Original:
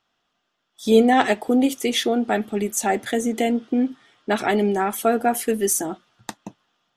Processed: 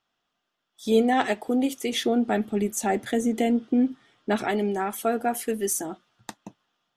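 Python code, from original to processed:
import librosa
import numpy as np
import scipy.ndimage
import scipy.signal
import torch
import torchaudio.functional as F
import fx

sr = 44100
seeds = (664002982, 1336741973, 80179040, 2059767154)

y = fx.low_shelf(x, sr, hz=370.0, db=7.0, at=(1.92, 4.45))
y = F.gain(torch.from_numpy(y), -5.5).numpy()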